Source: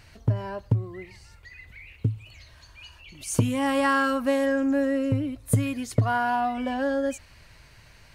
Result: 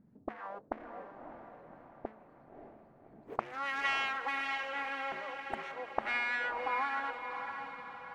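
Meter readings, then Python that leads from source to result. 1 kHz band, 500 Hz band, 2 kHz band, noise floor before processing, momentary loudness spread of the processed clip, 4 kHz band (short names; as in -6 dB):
-7.0 dB, -15.5 dB, -3.5 dB, -53 dBFS, 18 LU, -4.5 dB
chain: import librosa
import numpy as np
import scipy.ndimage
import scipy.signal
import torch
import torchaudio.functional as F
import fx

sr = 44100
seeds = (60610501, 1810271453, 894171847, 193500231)

p1 = fx.wiener(x, sr, points=15)
p2 = np.abs(p1)
p3 = fx.dynamic_eq(p2, sr, hz=720.0, q=0.75, threshold_db=-43.0, ratio=4.0, max_db=3)
p4 = fx.auto_wah(p3, sr, base_hz=210.0, top_hz=2000.0, q=2.6, full_db=-20.5, direction='up')
p5 = p4 + fx.echo_diffused(p4, sr, ms=583, feedback_pct=51, wet_db=-6.5, dry=0)
y = p5 * librosa.db_to_amplitude(1.5)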